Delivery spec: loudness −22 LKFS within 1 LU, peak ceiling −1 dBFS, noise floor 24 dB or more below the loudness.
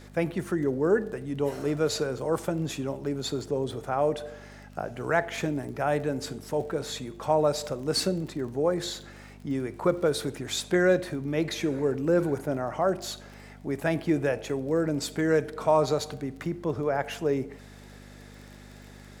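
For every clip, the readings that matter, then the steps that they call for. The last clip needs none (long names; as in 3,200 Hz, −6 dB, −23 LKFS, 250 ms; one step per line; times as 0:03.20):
crackle rate 21 per second; mains hum 50 Hz; hum harmonics up to 250 Hz; level of the hum −47 dBFS; integrated loudness −28.5 LKFS; sample peak −10.0 dBFS; target loudness −22.0 LKFS
→ click removal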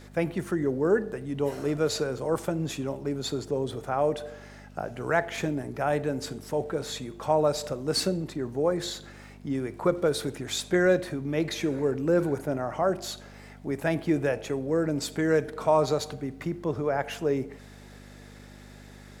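crackle rate 0.26 per second; mains hum 50 Hz; hum harmonics up to 250 Hz; level of the hum −47 dBFS
→ hum removal 50 Hz, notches 5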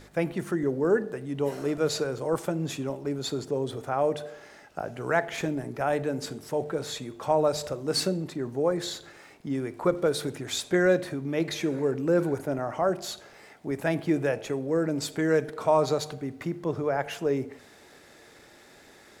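mains hum none found; integrated loudness −28.5 LKFS; sample peak −10.0 dBFS; target loudness −22.0 LKFS
→ level +6.5 dB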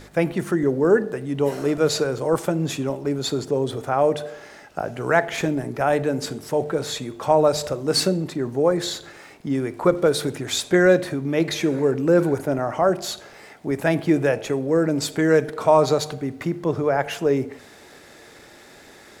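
integrated loudness −22.0 LKFS; sample peak −3.5 dBFS; background noise floor −47 dBFS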